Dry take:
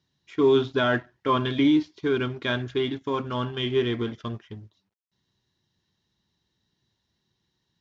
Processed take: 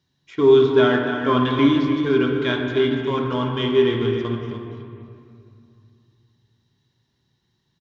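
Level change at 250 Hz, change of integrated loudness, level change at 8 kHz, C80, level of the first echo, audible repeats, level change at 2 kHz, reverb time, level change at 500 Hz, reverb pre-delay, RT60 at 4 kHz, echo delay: +5.5 dB, +6.0 dB, no reading, 3.5 dB, -9.0 dB, 1, +4.5 dB, 2.5 s, +7.5 dB, 7 ms, 1.6 s, 292 ms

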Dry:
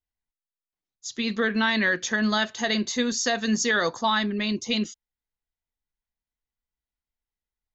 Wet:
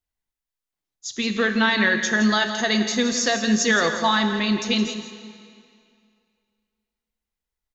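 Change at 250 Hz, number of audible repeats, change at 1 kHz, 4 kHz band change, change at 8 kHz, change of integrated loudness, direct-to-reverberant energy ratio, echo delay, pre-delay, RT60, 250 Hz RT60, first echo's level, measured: +4.5 dB, 1, +4.0 dB, +4.0 dB, no reading, +4.0 dB, 6.5 dB, 167 ms, 12 ms, 2.3 s, 2.3 s, -11.5 dB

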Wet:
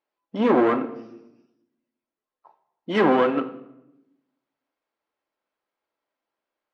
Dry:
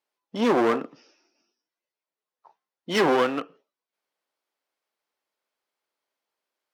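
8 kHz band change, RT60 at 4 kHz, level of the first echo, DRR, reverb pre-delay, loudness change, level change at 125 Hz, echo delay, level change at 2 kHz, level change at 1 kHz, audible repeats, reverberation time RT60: under -15 dB, 0.65 s, no echo, 7.5 dB, 3 ms, +2.0 dB, +3.0 dB, no echo, 0.0 dB, +2.0 dB, no echo, 0.95 s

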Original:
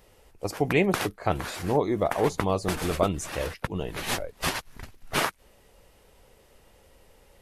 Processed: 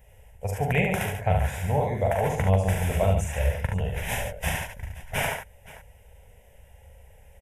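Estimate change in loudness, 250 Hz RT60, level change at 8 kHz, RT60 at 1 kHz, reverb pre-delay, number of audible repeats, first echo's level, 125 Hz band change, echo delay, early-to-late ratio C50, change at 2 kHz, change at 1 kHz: +1.5 dB, no reverb, -1.0 dB, no reverb, no reverb, 4, -5.5 dB, +8.0 dB, 42 ms, no reverb, +1.5 dB, 0.0 dB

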